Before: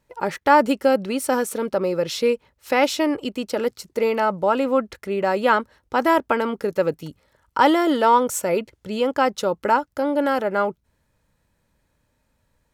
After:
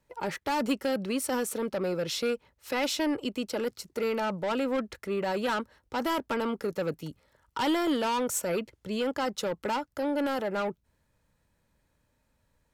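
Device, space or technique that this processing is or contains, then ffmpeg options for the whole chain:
one-band saturation: -filter_complex "[0:a]acrossover=split=250|2500[link_01][link_02][link_03];[link_02]asoftclip=type=tanh:threshold=-23.5dB[link_04];[link_01][link_04][link_03]amix=inputs=3:normalize=0,volume=-4dB"

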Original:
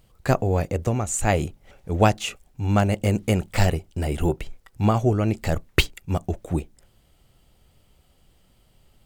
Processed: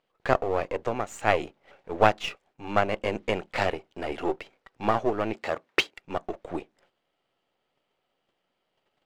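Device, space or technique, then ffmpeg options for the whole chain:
crystal radio: -filter_complex "[0:a]agate=range=-9dB:threshold=-54dB:ratio=16:detection=peak,highpass=400,lowpass=2900,aeval=exprs='if(lt(val(0),0),0.447*val(0),val(0))':channel_layout=same,asettb=1/sr,asplit=3[link_01][link_02][link_03];[link_01]atrim=end=5.344[link_04];[link_02]atrim=start=5.34:end=5.98,asetpts=PTS-STARTPTS,afade=type=in:duration=0.004:curve=qsin,afade=type=out:start_time=0.636:duration=0.004:curve=qsin,highpass=frequency=190:poles=1[link_05];[link_03]atrim=start=5.976[link_06];[link_04][link_05]acrossfade=duration=0.004:curve1=hsin:curve2=qsin[link_07];[link_07][link_06]acrossfade=duration=0.004:curve1=qsin:curve2=hsin,volume=3dB"

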